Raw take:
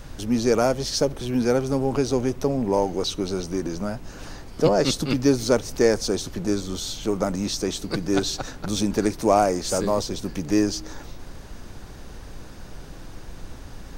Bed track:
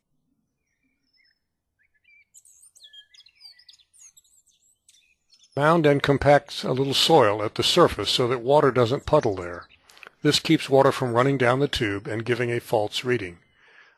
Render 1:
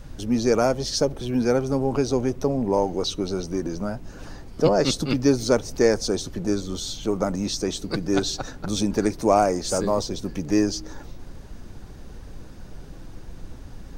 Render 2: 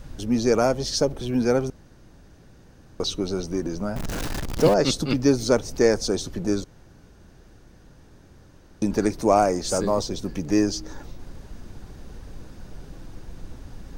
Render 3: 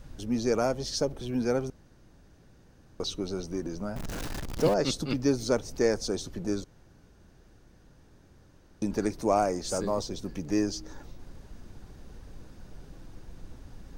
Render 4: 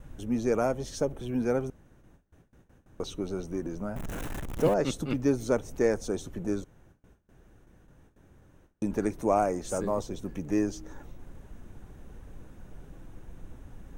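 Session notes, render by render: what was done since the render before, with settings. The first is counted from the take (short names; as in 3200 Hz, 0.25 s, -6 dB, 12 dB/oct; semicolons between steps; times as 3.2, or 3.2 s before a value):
denoiser 6 dB, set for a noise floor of -41 dBFS
1.7–3 room tone; 3.96–4.74 zero-crossing step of -24.5 dBFS; 6.64–8.82 room tone
gain -6.5 dB
gate with hold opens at -47 dBFS; bell 4700 Hz -15 dB 0.58 oct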